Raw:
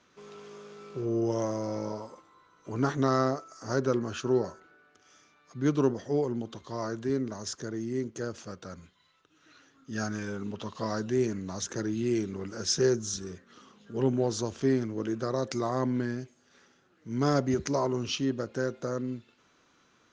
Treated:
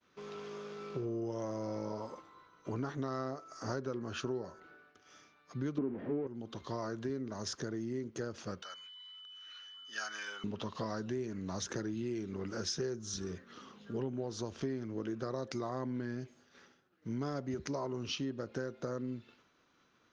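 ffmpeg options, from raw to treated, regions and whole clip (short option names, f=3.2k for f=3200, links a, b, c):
-filter_complex "[0:a]asettb=1/sr,asplit=3[a][b][c];[a]atrim=end=5.784[d];[b]atrim=start=5.78:end=6.27,asetpts=PTS-STARTPTS,afade=t=in:d=0.004:c=qsin,afade=t=out:st=0.486:d=0.004:c=qsin,aeval=exprs='val(0)+0.5*0.0282*sgn(val(0))':c=same,lowpass=f=2.3k:w=0.5412,lowpass=f=2.3k:w=1.3066,equalizer=f=270:w=0.92:g=12.5[e];[c]atrim=start=6.266[f];[d][e]acrossfade=d=0.004:c1=hsin:c2=qsin[g];[g][f]acrossfade=d=0.004:c1=qsin:c2=hsin,asettb=1/sr,asplit=3[h][i][j];[h]atrim=end=8.624[k];[i]atrim=start=8.62:end=10.44,asetpts=PTS-STARTPTS,afade=t=in:d=0.004:c=qsin,afade=t=out:st=1.816:d=0.004:c=qsin,highpass=1.2k,aeval=exprs='val(0)+0.00282*sin(2*PI*3000*n/s)':c=same[l];[j]atrim=start=10.436[m];[k][l]acrossfade=d=0.004:c1=hsin:c2=qsin[n];[n][m]acrossfade=d=0.004:c1=qsin:c2=hsin,agate=range=-33dB:threshold=-58dB:ratio=3:detection=peak,equalizer=f=7.7k:w=2.4:g=-10,acompressor=threshold=-37dB:ratio=6,volume=2dB"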